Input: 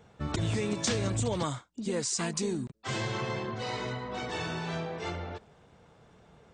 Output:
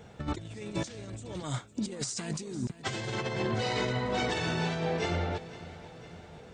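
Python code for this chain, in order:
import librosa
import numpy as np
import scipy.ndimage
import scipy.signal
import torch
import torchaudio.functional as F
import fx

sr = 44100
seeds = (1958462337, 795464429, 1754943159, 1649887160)

y = fx.peak_eq(x, sr, hz=1100.0, db=-5.5, octaves=0.45)
y = fx.over_compress(y, sr, threshold_db=-36.0, ratio=-0.5)
y = fx.echo_feedback(y, sr, ms=507, feedback_pct=57, wet_db=-16.5)
y = F.gain(torch.from_numpy(y), 3.5).numpy()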